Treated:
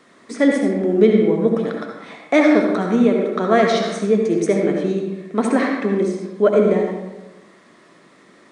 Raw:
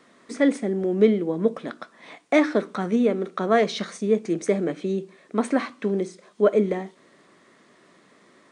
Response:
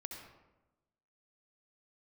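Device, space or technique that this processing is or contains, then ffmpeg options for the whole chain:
bathroom: -filter_complex "[1:a]atrim=start_sample=2205[a];[0:a][a]afir=irnorm=-1:irlink=0,asettb=1/sr,asplit=3[b][c][d];[b]atrim=end=5.584[e];[c]atrim=start=5.58:end=6.02,asetpts=PTS-STARTPTS,afade=t=in:d=0.004:c=qsin,afade=t=out:st=0.436:d=0.004:c=qsin,equalizer=f=1.8k:w=5.5:g=6[f];[d]atrim=start=6.016[g];[e][f]acrossfade=d=0.004:c1=hsin:c2=qsin[h];[h][g]acrossfade=d=0.004:c1=qsin:c2=hsin,volume=8.5dB"

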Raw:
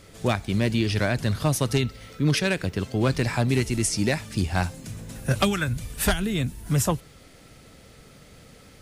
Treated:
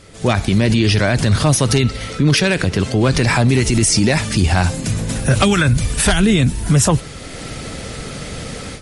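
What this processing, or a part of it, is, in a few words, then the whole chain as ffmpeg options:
low-bitrate web radio: -af "dynaudnorm=f=190:g=3:m=15.5dB,alimiter=limit=-11.5dB:level=0:latency=1:release=40,volume=6dB" -ar 48000 -c:a libmp3lame -b:a 48k

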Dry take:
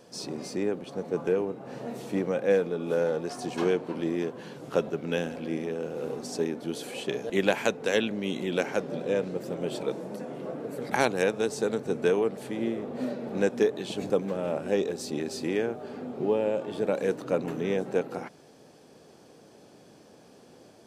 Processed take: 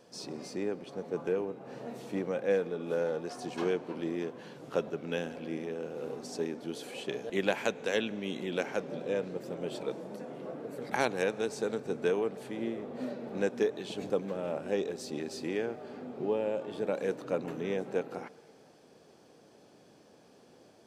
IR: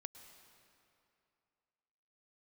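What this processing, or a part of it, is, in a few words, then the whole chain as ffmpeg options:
filtered reverb send: -filter_complex "[0:a]asplit=2[a][b];[b]highpass=f=310:p=1,lowpass=7.8k[c];[1:a]atrim=start_sample=2205[d];[c][d]afir=irnorm=-1:irlink=0,volume=-3.5dB[e];[a][e]amix=inputs=2:normalize=0,volume=-7dB"

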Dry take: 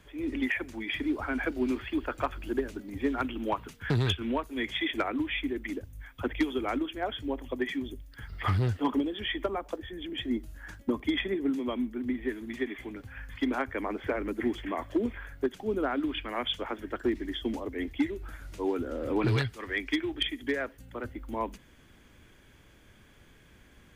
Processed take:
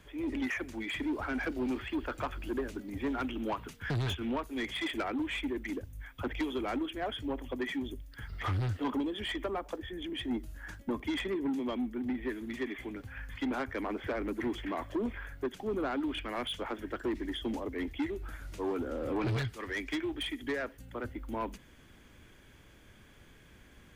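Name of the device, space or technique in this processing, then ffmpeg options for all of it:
saturation between pre-emphasis and de-emphasis: -af "highshelf=f=2.6k:g=8.5,asoftclip=type=tanh:threshold=-27.5dB,highshelf=f=2.6k:g=-8.5"

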